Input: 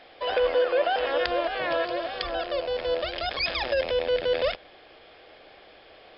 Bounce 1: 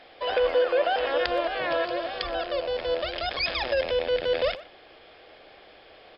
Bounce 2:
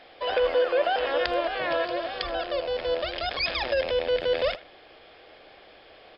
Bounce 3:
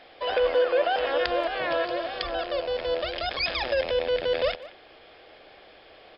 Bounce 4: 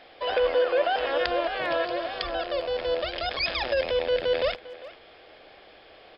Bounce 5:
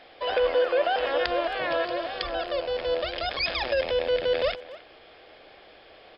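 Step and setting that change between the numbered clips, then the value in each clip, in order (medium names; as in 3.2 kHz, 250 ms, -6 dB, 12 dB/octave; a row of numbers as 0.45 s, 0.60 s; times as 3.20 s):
speakerphone echo, time: 120 ms, 80 ms, 180 ms, 400 ms, 270 ms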